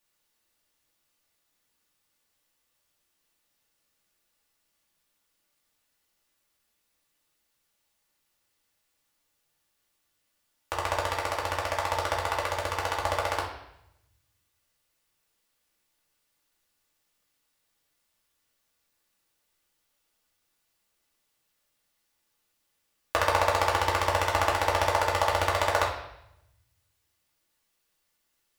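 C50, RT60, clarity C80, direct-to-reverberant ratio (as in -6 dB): 5.5 dB, 0.80 s, 8.5 dB, -5.0 dB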